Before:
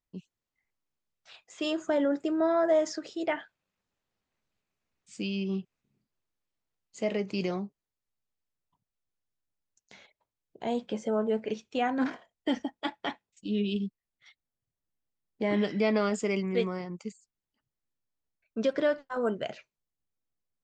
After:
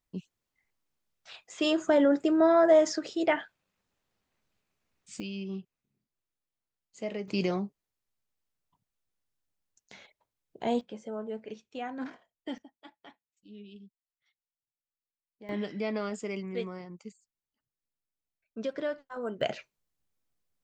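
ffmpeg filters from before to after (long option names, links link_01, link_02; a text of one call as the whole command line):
ffmpeg -i in.wav -af "asetnsamples=nb_out_samples=441:pad=0,asendcmd='5.2 volume volume -5.5dB;7.28 volume volume 2dB;10.81 volume volume -9dB;12.58 volume volume -19dB;15.49 volume volume -6.5dB;19.41 volume volume 5dB',volume=4dB" out.wav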